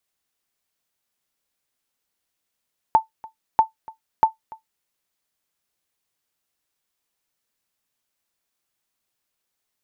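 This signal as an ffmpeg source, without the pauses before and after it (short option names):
-f lavfi -i "aevalsrc='0.531*(sin(2*PI*886*mod(t,0.64))*exp(-6.91*mod(t,0.64)/0.13)+0.0708*sin(2*PI*886*max(mod(t,0.64)-0.29,0))*exp(-6.91*max(mod(t,0.64)-0.29,0)/0.13))':d=1.92:s=44100"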